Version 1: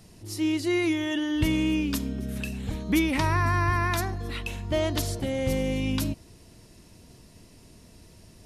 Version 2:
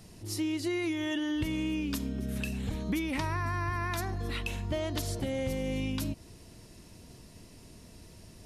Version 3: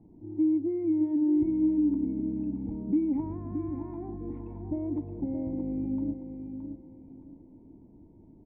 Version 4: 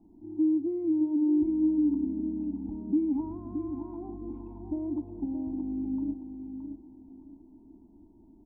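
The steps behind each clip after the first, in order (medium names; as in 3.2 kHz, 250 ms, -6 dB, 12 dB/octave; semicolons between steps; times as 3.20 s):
compression, threshold -29 dBFS, peak gain reduction 10.5 dB
cascade formant filter u; feedback delay 620 ms, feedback 29%, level -8 dB; trim +8 dB
static phaser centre 510 Hz, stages 6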